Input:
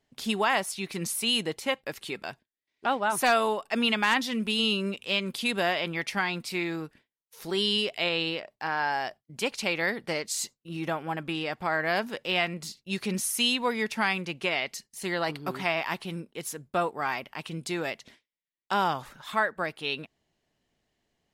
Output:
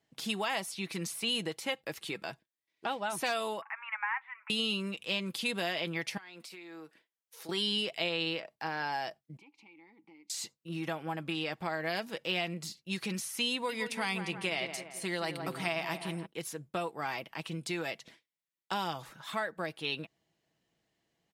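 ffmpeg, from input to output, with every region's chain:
ffmpeg -i in.wav -filter_complex "[0:a]asettb=1/sr,asplit=3[link_01][link_02][link_03];[link_01]atrim=end=3.624[link_04];[link_02]atrim=start=3.62:end=4.5,asetpts=PTS-STARTPTS,afade=type=in:duration=0.004:curve=qsin,afade=type=out:start_time=0.876:duration=0.004:curve=qsin,acompressor=mode=upward:threshold=-27dB:ratio=2.5:attack=3.2:release=140:knee=2.83:detection=peak,asuperpass=centerf=1400:order=12:qfactor=0.98[link_05];[link_03]atrim=start=4.496[link_06];[link_04][link_05]acrossfade=duration=0.004:curve1=hsin:curve2=qsin[link_07];[link_07][link_06]acrossfade=duration=0.004:curve1=qsin:curve2=hsin,asettb=1/sr,asplit=3[link_08][link_09][link_10];[link_08]atrim=end=6.174[link_11];[link_09]atrim=start=6.17:end=7.49,asetpts=PTS-STARTPTS,afade=type=in:duration=0.004:curve=qsin,afade=type=out:start_time=1.316:duration=0.004:curve=qsin,highpass=330,acompressor=threshold=-42dB:ratio=20:attack=3.2:release=140:knee=1:detection=peak[link_12];[link_10]atrim=start=7.486[link_13];[link_11][link_12]acrossfade=duration=0.004:curve1=hsin:curve2=qsin[link_14];[link_14][link_13]acrossfade=duration=0.004:curve1=qsin:curve2=hsin,asettb=1/sr,asplit=3[link_15][link_16][link_17];[link_15]atrim=end=9.374[link_18];[link_16]atrim=start=9.37:end=10.3,asetpts=PTS-STARTPTS,afade=type=in:duration=0.004:curve=qsin,afade=type=out:start_time=0.926:duration=0.004:curve=qsin,asplit=3[link_19][link_20][link_21];[link_19]bandpass=frequency=300:width_type=q:width=8,volume=0dB[link_22];[link_20]bandpass=frequency=870:width_type=q:width=8,volume=-6dB[link_23];[link_21]bandpass=frequency=2240:width_type=q:width=8,volume=-9dB[link_24];[link_22][link_23][link_24]amix=inputs=3:normalize=0,acompressor=threshold=-55dB:ratio=5:attack=3.2:release=140:knee=1:detection=peak[link_25];[link_17]atrim=start=10.296[link_26];[link_18][link_25]acrossfade=duration=0.004:curve1=hsin:curve2=qsin[link_27];[link_27][link_26]acrossfade=duration=0.004:curve1=qsin:curve2=hsin,asettb=1/sr,asplit=3[link_28][link_29][link_30];[link_28]atrim=end=13.524[link_31];[link_29]atrim=start=13.52:end=16.26,asetpts=PTS-STARTPTS,afade=type=in:duration=0.004:curve=qsin,afade=type=out:start_time=2.736:duration=0.004:curve=qsin,equalizer=frequency=8900:width_type=o:width=0.23:gain=10.5,asplit=2[link_32][link_33];[link_33]adelay=169,lowpass=frequency=2200:poles=1,volume=-10dB,asplit=2[link_34][link_35];[link_35]adelay=169,lowpass=frequency=2200:poles=1,volume=0.5,asplit=2[link_36][link_37];[link_37]adelay=169,lowpass=frequency=2200:poles=1,volume=0.5,asplit=2[link_38][link_39];[link_39]adelay=169,lowpass=frequency=2200:poles=1,volume=0.5,asplit=2[link_40][link_41];[link_41]adelay=169,lowpass=frequency=2200:poles=1,volume=0.5[link_42];[link_32][link_34][link_36][link_38][link_40][link_42]amix=inputs=6:normalize=0,atrim=end_sample=120834[link_43];[link_30]atrim=start=16.256[link_44];[link_31][link_43]acrossfade=duration=0.004:curve1=hsin:curve2=qsin[link_45];[link_45][link_44]acrossfade=duration=0.004:curve1=qsin:curve2=hsin,highpass=68,aecho=1:1:6.1:0.38,acrossover=split=910|2200|4800[link_46][link_47][link_48][link_49];[link_46]acompressor=threshold=-32dB:ratio=4[link_50];[link_47]acompressor=threshold=-41dB:ratio=4[link_51];[link_48]acompressor=threshold=-31dB:ratio=4[link_52];[link_49]acompressor=threshold=-39dB:ratio=4[link_53];[link_50][link_51][link_52][link_53]amix=inputs=4:normalize=0,volume=-2.5dB" out.wav

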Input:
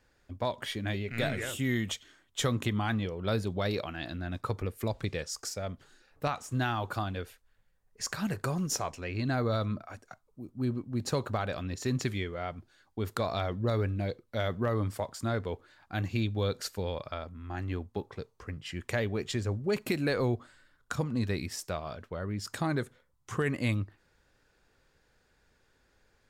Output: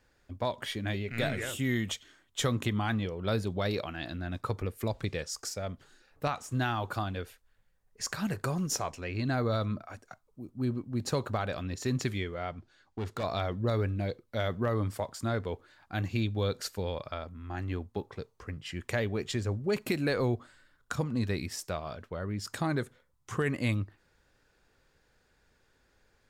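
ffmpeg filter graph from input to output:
ffmpeg -i in.wav -filter_complex "[0:a]asettb=1/sr,asplit=3[link_01][link_02][link_03];[link_01]atrim=end=12.514[link_04];[link_02]atrim=start=12.51:end=13.24,asetpts=PTS-STARTPTS,afade=type=in:duration=0.004:curve=qsin,afade=type=out:start_time=0.726:duration=0.004:curve=qsin,lowpass=7000,asoftclip=type=hard:threshold=-30.5dB[link_05];[link_03]atrim=start=13.236[link_06];[link_04][link_05]acrossfade=duration=0.004:curve1=hsin:curve2=qsin[link_07];[link_07][link_06]acrossfade=duration=0.004:curve1=qsin:curve2=hsin" out.wav

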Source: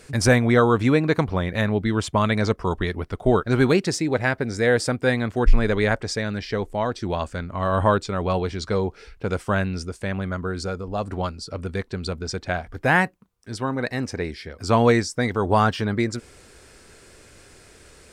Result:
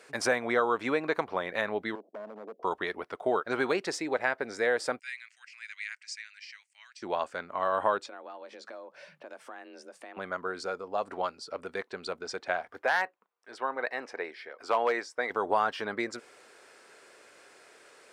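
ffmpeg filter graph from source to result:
ffmpeg -i in.wav -filter_complex "[0:a]asettb=1/sr,asplit=3[link_01][link_02][link_03];[link_01]atrim=end=1.954[link_04];[link_02]atrim=start=1.95:end=2.63,asetpts=PTS-STARTPTS,afade=type=in:duration=0.004:curve=qsin,afade=type=out:start_time=0.676:duration=0.004:curve=qsin,asuperpass=centerf=370:order=12:qfactor=0.73,acompressor=threshold=-28dB:ratio=16:attack=3.2:release=140:knee=1:detection=peak,asoftclip=type=hard:threshold=-31dB[link_05];[link_03]atrim=start=2.626[link_06];[link_04][link_05]acrossfade=duration=0.004:curve1=hsin:curve2=qsin[link_07];[link_07][link_06]acrossfade=duration=0.004:curve1=qsin:curve2=hsin,asettb=1/sr,asplit=3[link_08][link_09][link_10];[link_08]atrim=end=4.994[link_11];[link_09]atrim=start=4.99:end=7.02,asetpts=PTS-STARTPTS,afade=type=in:duration=0.004:curve=qsin,afade=type=out:start_time=2.026:duration=0.004:curve=qsin,asuperpass=centerf=4700:order=8:qfactor=0.67,equalizer=frequency=3500:width_type=o:width=0.42:gain=-13[link_12];[link_10]atrim=start=7.016[link_13];[link_11][link_12]acrossfade=duration=0.004:curve1=hsin:curve2=qsin[link_14];[link_14][link_13]acrossfade=duration=0.004:curve1=qsin:curve2=hsin,asettb=1/sr,asplit=3[link_15][link_16][link_17];[link_15]atrim=end=8.064[link_18];[link_16]atrim=start=8.06:end=10.17,asetpts=PTS-STARTPTS,afade=type=in:duration=0.004:curve=qsin,afade=type=out:start_time=2.106:duration=0.004:curve=qsin,equalizer=frequency=97:width=1.5:gain=-7.5,acompressor=threshold=-37dB:ratio=10:attack=3.2:release=140:knee=1:detection=peak,afreqshift=130[link_19];[link_17]atrim=start=10.166[link_20];[link_18][link_19]acrossfade=duration=0.004:curve1=hsin:curve2=qsin[link_21];[link_21][link_20]acrossfade=duration=0.004:curve1=qsin:curve2=hsin,asettb=1/sr,asplit=3[link_22][link_23][link_24];[link_22]atrim=end=12.824[link_25];[link_23]atrim=start=12.82:end=15.3,asetpts=PTS-STARTPTS,afade=type=in:duration=0.004:curve=qsin,afade=type=out:start_time=2.476:duration=0.004:curve=qsin,bass=frequency=250:gain=-15,treble=frequency=4000:gain=-9,aeval=exprs='0.316*(abs(mod(val(0)/0.316+3,4)-2)-1)':channel_layout=same[link_26];[link_24]atrim=start=15.296[link_27];[link_25][link_26]acrossfade=duration=0.004:curve1=hsin:curve2=qsin[link_28];[link_28][link_27]acrossfade=duration=0.004:curve1=qsin:curve2=hsin,highpass=560,highshelf=frequency=3200:gain=-11,acompressor=threshold=-25dB:ratio=2" out.wav

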